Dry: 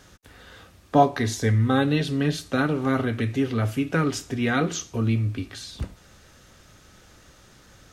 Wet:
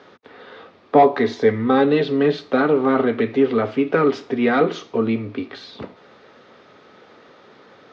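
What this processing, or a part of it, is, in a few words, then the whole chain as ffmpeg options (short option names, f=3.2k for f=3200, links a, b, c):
overdrive pedal into a guitar cabinet: -filter_complex "[0:a]asplit=2[a][b];[b]highpass=f=720:p=1,volume=17dB,asoftclip=type=tanh:threshold=-4dB[c];[a][c]amix=inputs=2:normalize=0,lowpass=f=1.2k:p=1,volume=-6dB,highpass=f=260:p=1,highpass=110,equalizer=f=110:t=q:w=4:g=-4,equalizer=f=240:t=q:w=4:g=5,equalizer=f=430:t=q:w=4:g=8,equalizer=f=1.6k:t=q:w=4:g=-5,equalizer=f=2.8k:t=q:w=4:g=-4,lowpass=f=4.4k:w=0.5412,lowpass=f=4.4k:w=1.3066,equalizer=f=100:w=1.2:g=6,volume=1.5dB"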